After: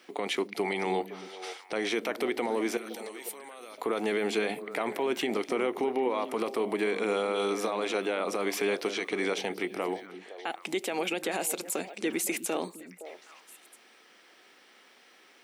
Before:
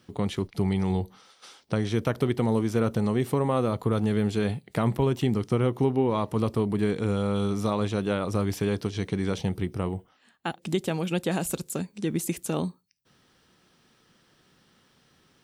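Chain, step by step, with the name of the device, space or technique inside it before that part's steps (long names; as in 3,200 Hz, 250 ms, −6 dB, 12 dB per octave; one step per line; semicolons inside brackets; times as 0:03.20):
laptop speaker (high-pass filter 310 Hz 24 dB per octave; parametric band 730 Hz +4.5 dB 0.41 octaves; parametric band 2,200 Hz +9.5 dB 0.55 octaves; brickwall limiter −23.5 dBFS, peak gain reduction 11.5 dB)
0:02.77–0:03.78: first-order pre-emphasis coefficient 0.9
echo through a band-pass that steps 257 ms, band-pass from 210 Hz, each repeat 1.4 octaves, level −7.5 dB
level +3.5 dB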